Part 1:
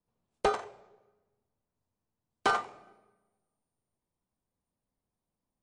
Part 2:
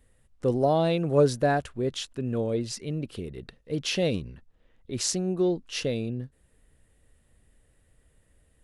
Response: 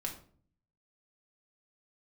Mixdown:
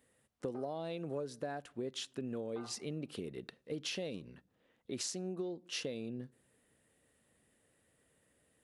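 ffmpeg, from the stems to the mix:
-filter_complex "[0:a]lowpass=1.2k,adelay=100,volume=-14.5dB[a];[1:a]volume=-3.5dB,asplit=2[b][c];[c]volume=-21.5dB[d];[2:a]atrim=start_sample=2205[e];[d][e]afir=irnorm=-1:irlink=0[f];[a][b][f]amix=inputs=3:normalize=0,highpass=180,acompressor=threshold=-36dB:ratio=16"

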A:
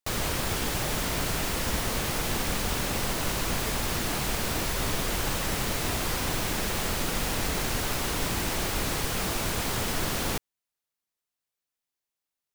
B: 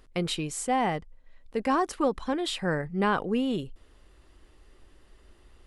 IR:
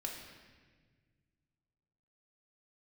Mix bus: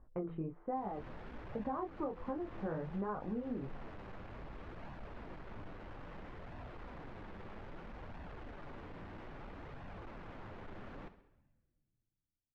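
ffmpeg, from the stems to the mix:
-filter_complex "[0:a]lowpass=1.8k,acrusher=bits=9:mix=0:aa=0.000001,asoftclip=type=tanh:threshold=-33.5dB,adelay=700,volume=-9.5dB,asplit=3[a][b][c];[b]volume=-14dB[d];[c]volume=-13dB[e];[1:a]lowpass=f=1.3k:w=0.5412,lowpass=f=1.3k:w=1.3066,bandreject=f=166.8:t=h:w=4,bandreject=f=333.6:t=h:w=4,bandreject=f=500.4:t=h:w=4,flanger=delay=19:depth=5.8:speed=1.3,volume=2dB[f];[2:a]atrim=start_sample=2205[g];[d][g]afir=irnorm=-1:irlink=0[h];[e]aecho=0:1:66|132|198|264|330|396|462|528:1|0.56|0.314|0.176|0.0983|0.0551|0.0308|0.0173[i];[a][f][h][i]amix=inputs=4:normalize=0,aemphasis=mode=reproduction:type=75kf,flanger=delay=1.1:depth=9.3:regen=-40:speed=0.61:shape=sinusoidal,acompressor=threshold=-35dB:ratio=12"

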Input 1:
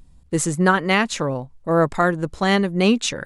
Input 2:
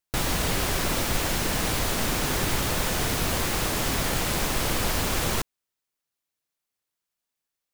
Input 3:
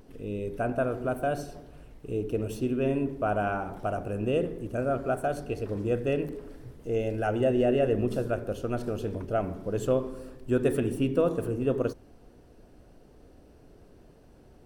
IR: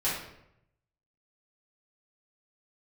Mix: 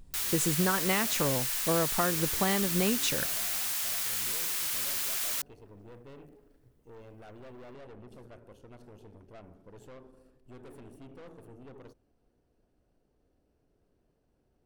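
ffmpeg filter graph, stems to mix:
-filter_complex "[0:a]acompressor=threshold=-21dB:ratio=6,volume=-4dB[a];[1:a]highpass=1.4k,crystalizer=i=1.5:c=0,volume=-9.5dB[b];[2:a]aeval=exprs='(tanh(35.5*val(0)+0.6)-tanh(0.6))/35.5':c=same,volume=-15.5dB[c];[a][b][c]amix=inputs=3:normalize=0"

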